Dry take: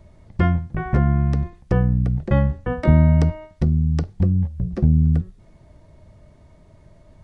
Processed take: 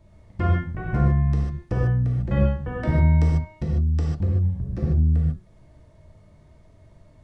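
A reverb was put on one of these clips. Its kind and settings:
reverb whose tail is shaped and stops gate 170 ms flat, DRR −4 dB
level −8 dB

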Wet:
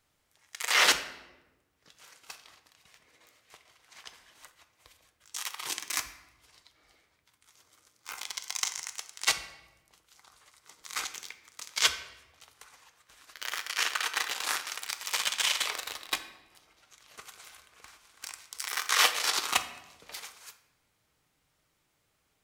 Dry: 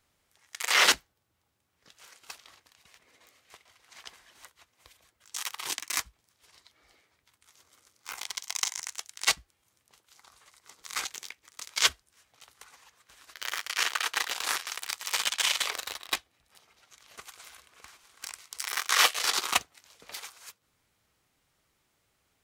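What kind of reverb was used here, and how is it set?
rectangular room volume 510 cubic metres, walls mixed, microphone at 0.48 metres
level −1.5 dB

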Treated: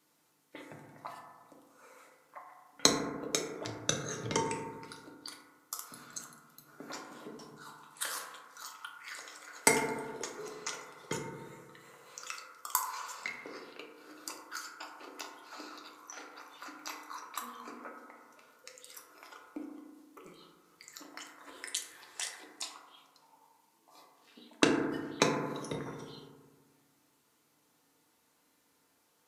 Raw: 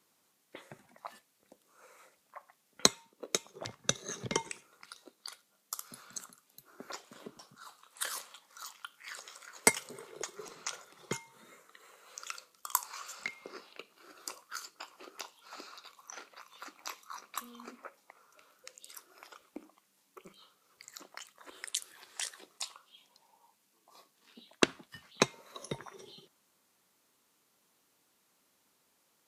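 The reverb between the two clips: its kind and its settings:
feedback delay network reverb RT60 1.5 s, low-frequency decay 1.2×, high-frequency decay 0.25×, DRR −1 dB
level −1.5 dB

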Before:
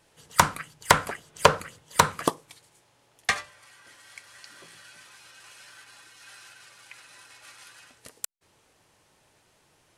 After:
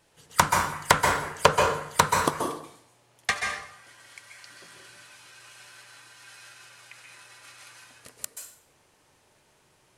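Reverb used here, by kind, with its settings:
dense smooth reverb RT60 0.68 s, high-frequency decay 0.75×, pre-delay 120 ms, DRR 1.5 dB
level −1.5 dB

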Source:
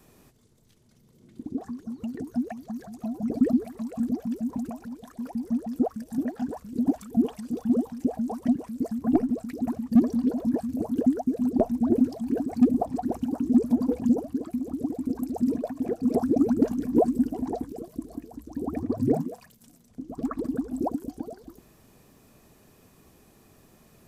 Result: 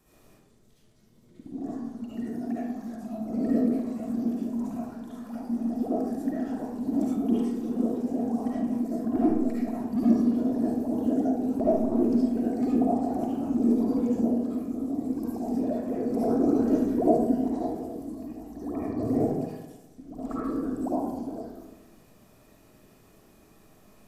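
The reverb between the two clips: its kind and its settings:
comb and all-pass reverb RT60 1.1 s, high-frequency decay 0.55×, pre-delay 30 ms, DRR −9 dB
level −9 dB

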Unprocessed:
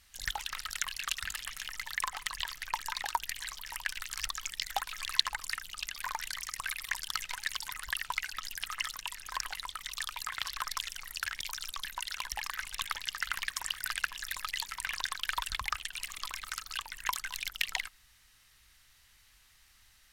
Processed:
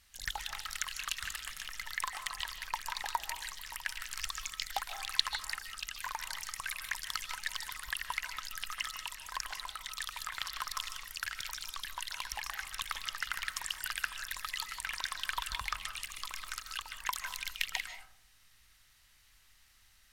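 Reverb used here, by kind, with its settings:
comb and all-pass reverb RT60 0.68 s, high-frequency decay 0.25×, pre-delay 110 ms, DRR 8.5 dB
level −2.5 dB

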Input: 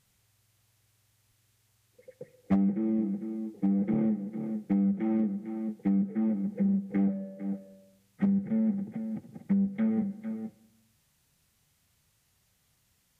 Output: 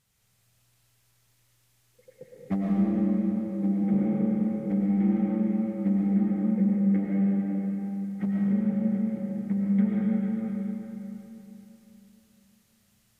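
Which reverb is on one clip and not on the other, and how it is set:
comb and all-pass reverb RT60 3.5 s, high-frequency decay 1×, pre-delay 70 ms, DRR −5 dB
level −3 dB

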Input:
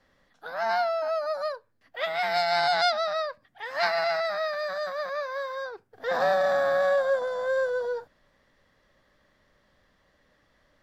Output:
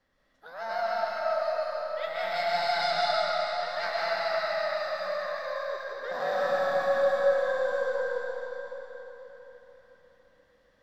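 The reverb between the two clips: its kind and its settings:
comb and all-pass reverb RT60 4.1 s, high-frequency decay 0.95×, pre-delay 90 ms, DRR −5.5 dB
level −8.5 dB

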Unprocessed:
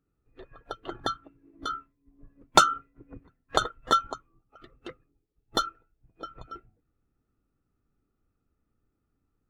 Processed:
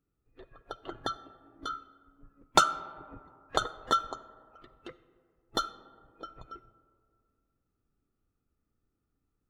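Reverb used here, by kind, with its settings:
comb and all-pass reverb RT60 2.3 s, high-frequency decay 0.35×, pre-delay 10 ms, DRR 16 dB
level −4 dB

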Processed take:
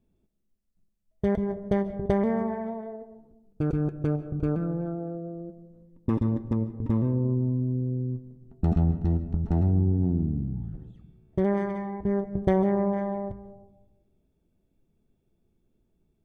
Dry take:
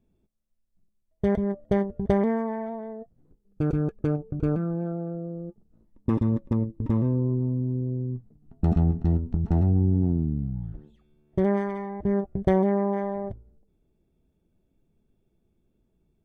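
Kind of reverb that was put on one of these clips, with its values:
comb and all-pass reverb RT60 1 s, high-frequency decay 0.25×, pre-delay 105 ms, DRR 13 dB
level −1.5 dB

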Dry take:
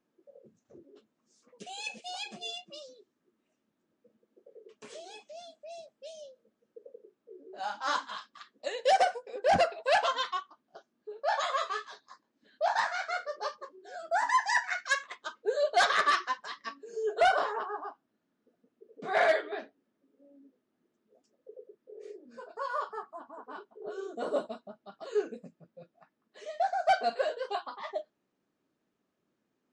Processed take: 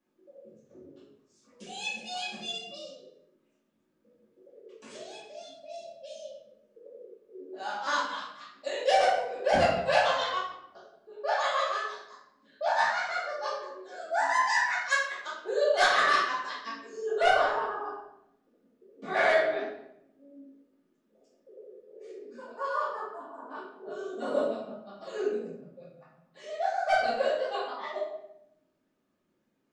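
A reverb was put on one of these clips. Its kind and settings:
rectangular room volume 220 cubic metres, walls mixed, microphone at 2.4 metres
level −5 dB

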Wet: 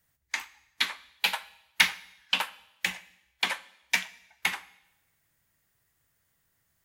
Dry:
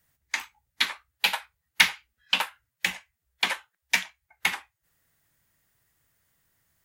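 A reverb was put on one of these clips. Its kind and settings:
coupled-rooms reverb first 0.88 s, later 2.4 s, from −26 dB, DRR 16 dB
level −2.5 dB

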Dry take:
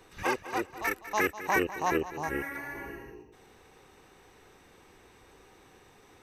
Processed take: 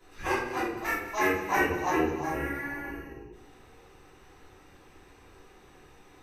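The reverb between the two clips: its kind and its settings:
rectangular room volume 150 cubic metres, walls mixed, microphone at 3.1 metres
level −9.5 dB

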